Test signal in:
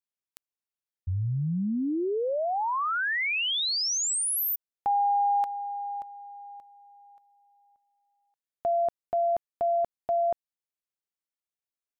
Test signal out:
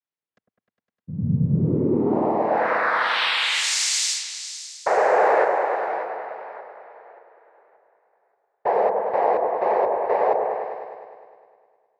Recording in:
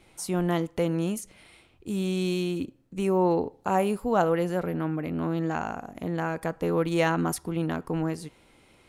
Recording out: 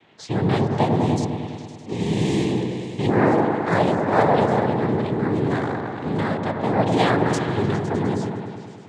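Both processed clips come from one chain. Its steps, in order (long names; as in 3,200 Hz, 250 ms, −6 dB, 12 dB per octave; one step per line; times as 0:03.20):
cochlear-implant simulation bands 6
low-pass that shuts in the quiet parts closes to 2,700 Hz, open at −24.5 dBFS
echo whose low-pass opens from repeat to repeat 102 ms, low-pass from 750 Hz, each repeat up 1 octave, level −3 dB
level +4.5 dB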